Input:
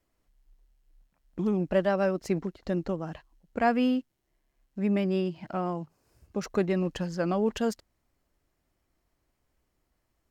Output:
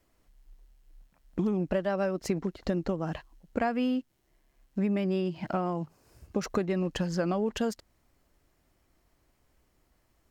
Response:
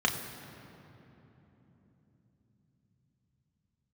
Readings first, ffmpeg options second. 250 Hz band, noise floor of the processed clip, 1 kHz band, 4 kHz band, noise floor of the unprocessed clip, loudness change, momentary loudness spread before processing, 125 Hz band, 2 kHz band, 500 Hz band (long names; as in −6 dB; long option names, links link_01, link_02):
−1.5 dB, −71 dBFS, −2.5 dB, 0.0 dB, −77 dBFS, −2.0 dB, 14 LU, −0.5 dB, −2.5 dB, −2.0 dB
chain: -af "acompressor=threshold=-32dB:ratio=6,volume=6.5dB"